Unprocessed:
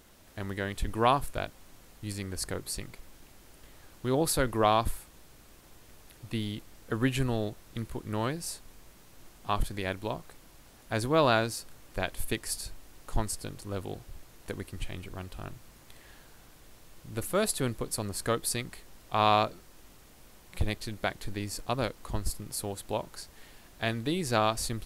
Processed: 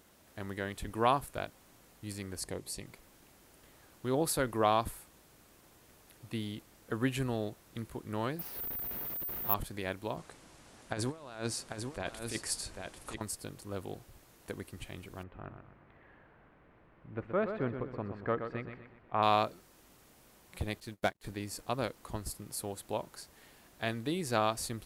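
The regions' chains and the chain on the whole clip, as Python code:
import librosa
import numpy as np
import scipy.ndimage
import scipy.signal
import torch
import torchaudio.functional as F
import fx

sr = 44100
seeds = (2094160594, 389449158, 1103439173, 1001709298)

y = fx.chain(x, sr, fx.lowpass(hz=12000.0, slope=12),
    fx.peak_eq(hz=1400.0, db=-11.0, octaves=0.41), at=(2.4, 2.86))
y = fx.chain(y, sr, fx.delta_mod(bps=64000, step_db=-31.5),
    fx.spacing_loss(db_at_10k=21),
    fx.resample_bad(factor=3, down='filtered', up='zero_stuff'), at=(8.39, 9.54))
y = fx.chain(y, sr, fx.lowpass(hz=9800.0, slope=24),
    fx.over_compress(threshold_db=-32.0, ratio=-0.5),
    fx.echo_single(ms=794, db=-5.5), at=(10.17, 13.21))
y = fx.chain(y, sr, fx.lowpass(hz=2200.0, slope=24),
    fx.echo_feedback(ms=124, feedback_pct=41, wet_db=-8.0), at=(15.23, 19.23))
y = fx.chain(y, sr, fx.leveller(passes=2),
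    fx.upward_expand(threshold_db=-45.0, expansion=2.5), at=(20.8, 21.31))
y = fx.highpass(y, sr, hz=110.0, slope=6)
y = fx.peak_eq(y, sr, hz=4000.0, db=-2.5, octaves=1.9)
y = y * librosa.db_to_amplitude(-3.0)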